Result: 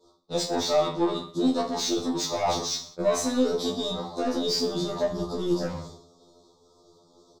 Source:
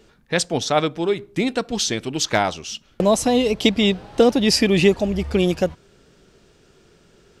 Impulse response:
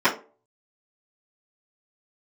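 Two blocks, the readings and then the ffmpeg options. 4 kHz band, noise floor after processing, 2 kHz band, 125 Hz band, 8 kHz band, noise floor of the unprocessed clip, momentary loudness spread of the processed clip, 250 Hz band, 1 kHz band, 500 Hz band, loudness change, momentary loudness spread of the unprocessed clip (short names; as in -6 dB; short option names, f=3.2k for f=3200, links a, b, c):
-6.5 dB, -61 dBFS, -15.0 dB, -10.5 dB, -5.5 dB, -56 dBFS, 6 LU, -7.0 dB, -5.0 dB, -7.0 dB, -7.0 dB, 8 LU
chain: -filter_complex "[0:a]agate=range=-33dB:threshold=-42dB:ratio=3:detection=peak,equalizer=f=9.5k:w=5:g=-11,bandreject=f=79.61:t=h:w=4,bandreject=f=159.22:t=h:w=4,bandreject=f=238.83:t=h:w=4,bandreject=f=318.44:t=h:w=4,bandreject=f=398.05:t=h:w=4,bandreject=f=477.66:t=h:w=4,bandreject=f=557.27:t=h:w=4,bandreject=f=636.88:t=h:w=4,acontrast=73,alimiter=limit=-8dB:level=0:latency=1,areverse,acompressor=threshold=-28dB:ratio=6,areverse,asuperstop=centerf=2100:order=20:qfactor=0.93,asplit=2[a][b];[b]highpass=f=720:p=1,volume=16dB,asoftclip=type=tanh:threshold=-19dB[c];[a][c]amix=inputs=2:normalize=0,lowpass=f=3k:p=1,volume=-6dB,aecho=1:1:20|46|79.8|123.7|180.9:0.631|0.398|0.251|0.158|0.1,afftfilt=real='re*2*eq(mod(b,4),0)':imag='im*2*eq(mod(b,4),0)':win_size=2048:overlap=0.75,volume=3dB"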